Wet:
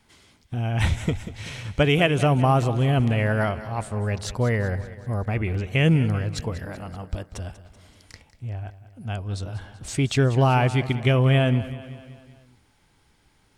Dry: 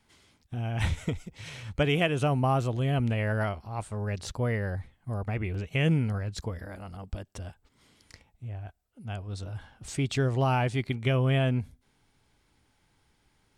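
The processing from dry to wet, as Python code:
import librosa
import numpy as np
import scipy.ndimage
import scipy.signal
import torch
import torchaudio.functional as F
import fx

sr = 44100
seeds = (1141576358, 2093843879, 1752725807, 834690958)

y = fx.echo_feedback(x, sr, ms=191, feedback_pct=56, wet_db=-15.0)
y = F.gain(torch.from_numpy(y), 6.0).numpy()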